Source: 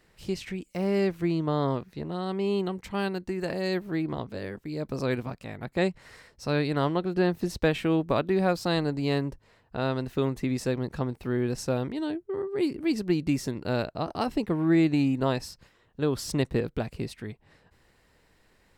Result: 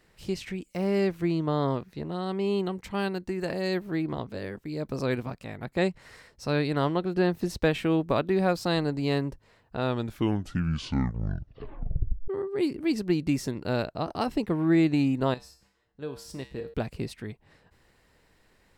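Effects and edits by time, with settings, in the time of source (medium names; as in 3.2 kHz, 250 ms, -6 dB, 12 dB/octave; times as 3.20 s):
9.78 s: tape stop 2.50 s
15.34–16.74 s: feedback comb 66 Hz, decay 0.5 s, harmonics odd, mix 80%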